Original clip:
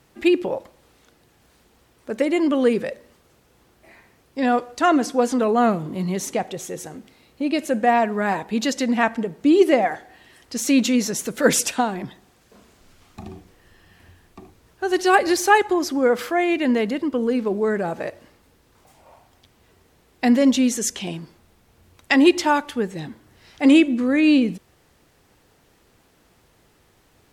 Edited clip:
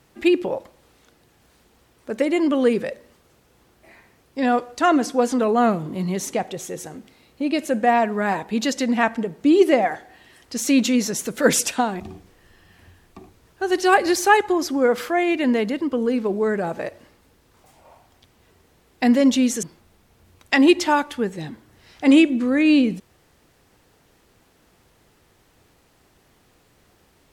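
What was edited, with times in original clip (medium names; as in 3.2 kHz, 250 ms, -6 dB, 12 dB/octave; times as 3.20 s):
12.00–13.21 s: delete
20.84–21.21 s: delete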